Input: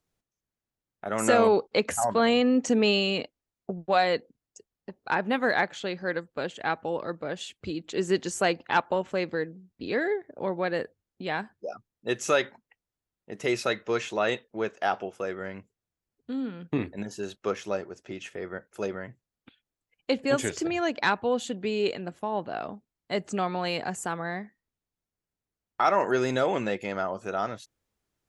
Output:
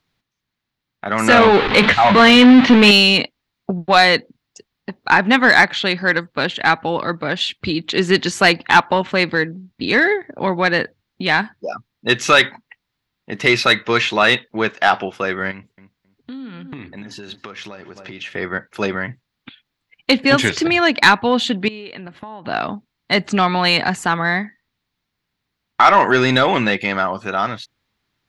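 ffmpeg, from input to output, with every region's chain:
-filter_complex "[0:a]asettb=1/sr,asplit=3[a][b][c];[a]atrim=end=1.304[d];[b]atrim=start=1.3:end=2.91,asetpts=PTS-STARTPTS,afade=t=in:d=0.004:c=qsin,afade=t=out:st=1.606:d=0.004:c=qsin,aeval=exprs='val(0)+0.5*0.0708*sgn(val(0))':c=same,lowpass=f=3.7k:w=0.5412,lowpass=f=3.7k:w=1.3066,asplit=2[e][f];[f]adelay=20,volume=-10dB[g];[e][g]amix=inputs=2:normalize=0,atrim=end_sample=71001[h];[c]atrim=start=2.906[i];[d][h]acrossfade=d=0.004:c1=hsin:c2=qsin[j];[j][i]acrossfade=d=0.004:c1=qsin:c2=hsin,asettb=1/sr,asplit=3[k][l][m];[k]atrim=end=15.514[n];[l]atrim=start=15.51:end=18.32,asetpts=PTS-STARTPTS,afade=t=in:d=0.004:c=qsin,afade=t=out:st=2.806:d=0.004:c=qsin,asplit=2[o][p];[p]adelay=267,lowpass=f=1.3k:p=1,volume=-18.5dB,asplit=2[q][r];[r]adelay=267,lowpass=f=1.3k:p=1,volume=0.2[s];[o][q][s]amix=inputs=3:normalize=0,atrim=end_sample=123921,acompressor=threshold=-44dB:ratio=6:attack=3.2:release=140:knee=1:detection=peak[t];[m]atrim=start=18.316[u];[n][t]acrossfade=d=0.004:c1=hsin:c2=qsin[v];[v][u]acrossfade=d=0.004:c1=qsin:c2=hsin,asettb=1/sr,asplit=3[w][x][y];[w]atrim=end=21.684[z];[x]atrim=start=21.68:end=22.45,asetpts=PTS-STARTPTS,afade=t=in:d=0.004:c=qsin,afade=t=out:st=0.766:d=0.004:c=qsin,bass=f=250:g=-1,treble=f=4k:g=-9,acompressor=threshold=-41dB:ratio=16:attack=3.2:release=140:knee=1:detection=peak[aa];[y]atrim=start=22.446[ab];[z][aa]acrossfade=d=0.004:c1=hsin:c2=qsin[ac];[ac][ab]acrossfade=d=0.004:c1=qsin:c2=hsin,dynaudnorm=f=240:g=13:m=3.5dB,equalizer=f=125:t=o:w=1:g=6,equalizer=f=250:t=o:w=1:g=5,equalizer=f=500:t=o:w=1:g=-3,equalizer=f=1k:t=o:w=1:g=6,equalizer=f=2k:t=o:w=1:g=8,equalizer=f=4k:t=o:w=1:g=12,equalizer=f=8k:t=o:w=1:g=-7,acontrast=40,volume=-1dB"

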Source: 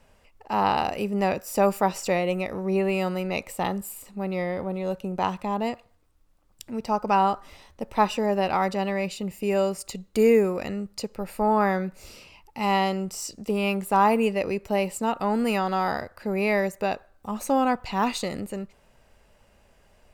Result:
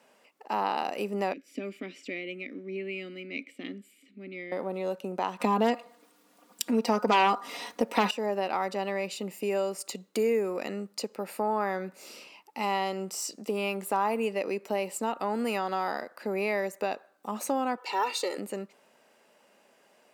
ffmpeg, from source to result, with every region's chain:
-filter_complex "[0:a]asettb=1/sr,asplit=3[a][b][c];[a]atrim=end=1.334[d];[b]atrim=start=1.33:end=4.52,asetpts=PTS-STARTPTS,afade=t=in:d=0.004:c=qsin,afade=t=out:st=3.186:d=0.004:c=qsin,acontrast=53,asplit=3[e][f][g];[e]bandpass=f=270:t=q:w=8,volume=0dB[h];[f]bandpass=f=2.29k:t=q:w=8,volume=-6dB[i];[g]bandpass=f=3.01k:t=q:w=8,volume=-9dB[j];[h][i][j]amix=inputs=3:normalize=0[k];[c]atrim=start=4.516[l];[d][k]acrossfade=d=0.004:c1=hsin:c2=qsin[m];[m][l]acrossfade=d=0.004:c1=qsin:c2=hsin,asettb=1/sr,asplit=3[n][o][p];[n]atrim=end=5.404[q];[o]atrim=start=5.4:end=8.11,asetpts=PTS-STARTPTS,afade=t=in:d=0.004:c=qsin,afade=t=out:st=2.706:d=0.004:c=qsin,aecho=1:1:4.2:0.82,atrim=end_sample=119511,aeval=exprs='0.473*sin(PI/2*2.51*val(0)/0.473)':c=same[r];[p]atrim=start=8.106[s];[q][r]acrossfade=d=0.004:c1=hsin:c2=qsin[t];[t][s]acrossfade=d=0.004:c1=qsin:c2=hsin,asettb=1/sr,asplit=3[u][v][w];[u]atrim=end=17.774[x];[v]atrim=start=17.77:end=18.38,asetpts=PTS-STARTPTS,afade=t=in:d=0.004:c=qsin,afade=t=out:st=0.606:d=0.004:c=qsin,highpass=f=270:w=0.5412,highpass=f=270:w=1.3066,aecho=1:1:2.2:0.92,atrim=end_sample=26901[y];[w]atrim=start=18.376[z];[x][y]acrossfade=d=0.004:c1=hsin:c2=qsin[aa];[aa][z]acrossfade=d=0.004:c1=qsin:c2=hsin,highpass=f=230:w=0.5412,highpass=f=230:w=1.3066,acompressor=threshold=-29dB:ratio=2"

